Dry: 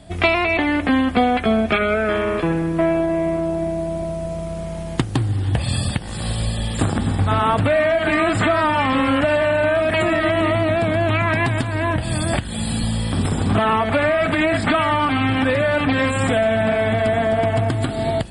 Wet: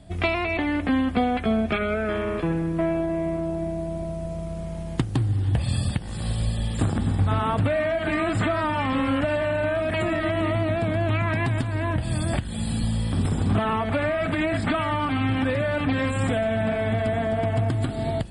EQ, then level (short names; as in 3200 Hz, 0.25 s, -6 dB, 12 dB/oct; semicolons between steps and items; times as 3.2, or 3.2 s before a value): low shelf 280 Hz +6.5 dB; -8.0 dB